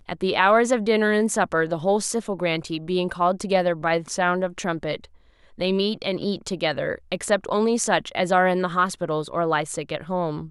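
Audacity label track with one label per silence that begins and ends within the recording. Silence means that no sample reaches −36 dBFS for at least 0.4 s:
5.050000	5.590000	silence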